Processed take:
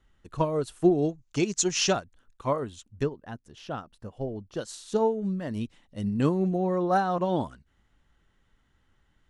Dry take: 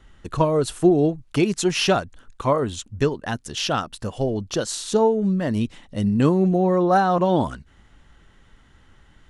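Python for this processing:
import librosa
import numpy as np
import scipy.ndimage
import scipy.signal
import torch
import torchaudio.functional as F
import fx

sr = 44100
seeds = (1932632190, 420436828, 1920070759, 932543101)

y = fx.lowpass_res(x, sr, hz=6700.0, q=4.3, at=(1.02, 1.93))
y = fx.high_shelf(y, sr, hz=2100.0, db=-11.5, at=(3.02, 4.55), fade=0.02)
y = fx.upward_expand(y, sr, threshold_db=-32.0, expansion=1.5)
y = y * librosa.db_to_amplitude(-4.0)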